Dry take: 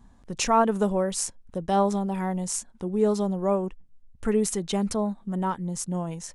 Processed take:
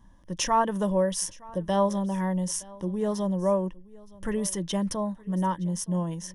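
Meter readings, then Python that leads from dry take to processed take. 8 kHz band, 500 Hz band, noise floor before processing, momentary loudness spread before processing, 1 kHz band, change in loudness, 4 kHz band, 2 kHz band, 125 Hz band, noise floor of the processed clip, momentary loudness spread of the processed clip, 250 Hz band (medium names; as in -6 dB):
-1.5 dB, -2.0 dB, -55 dBFS, 8 LU, -1.5 dB, -1.5 dB, 0.0 dB, -1.5 dB, +1.0 dB, -51 dBFS, 7 LU, -1.0 dB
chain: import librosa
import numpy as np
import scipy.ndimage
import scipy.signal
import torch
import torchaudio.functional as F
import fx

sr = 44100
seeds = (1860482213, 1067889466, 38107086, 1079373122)

y = fx.ripple_eq(x, sr, per_octave=1.2, db=10)
y = y + 10.0 ** (-22.5 / 20.0) * np.pad(y, (int(918 * sr / 1000.0), 0))[:len(y)]
y = F.gain(torch.from_numpy(y), -2.5).numpy()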